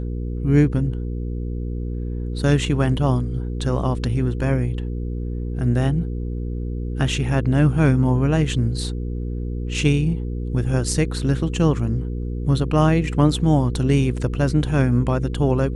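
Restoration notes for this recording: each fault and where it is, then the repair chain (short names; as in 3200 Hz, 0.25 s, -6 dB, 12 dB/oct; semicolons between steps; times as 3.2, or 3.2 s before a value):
hum 60 Hz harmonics 8 -26 dBFS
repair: de-hum 60 Hz, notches 8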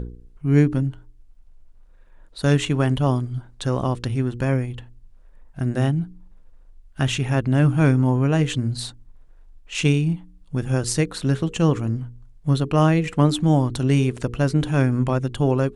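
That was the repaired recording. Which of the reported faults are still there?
none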